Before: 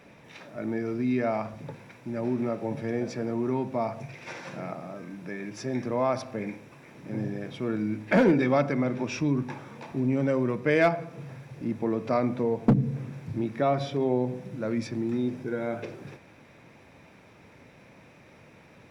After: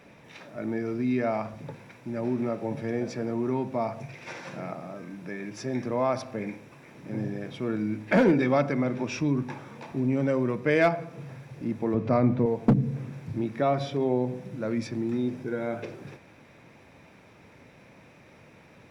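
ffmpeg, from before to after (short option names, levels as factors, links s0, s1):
-filter_complex "[0:a]asettb=1/sr,asplit=3[s0][s1][s2];[s0]atrim=end=11.944[s3];[s1]atrim=start=11.94:end=12.46,asetpts=PTS-STARTPTS,afade=t=in:d=0.004:c=qsin,afade=t=out:st=0.516:d=0.004:c=qsin,aemphasis=mode=reproduction:type=bsi[s4];[s2]atrim=start=12.456[s5];[s3][s4]acrossfade=d=0.004:c1=hsin:c2=qsin[s6];[s6][s5]acrossfade=d=0.004:c1=qsin:c2=hsin"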